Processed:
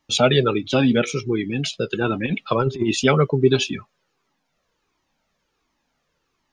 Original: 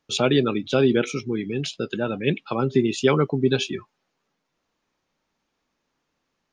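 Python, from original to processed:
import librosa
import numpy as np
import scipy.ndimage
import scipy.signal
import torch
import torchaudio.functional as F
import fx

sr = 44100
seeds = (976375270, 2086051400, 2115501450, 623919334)

y = fx.over_compress(x, sr, threshold_db=-23.0, ratio=-0.5, at=(2.01, 3.05))
y = fx.comb_cascade(y, sr, direction='falling', hz=1.4)
y = y * 10.0 ** (8.5 / 20.0)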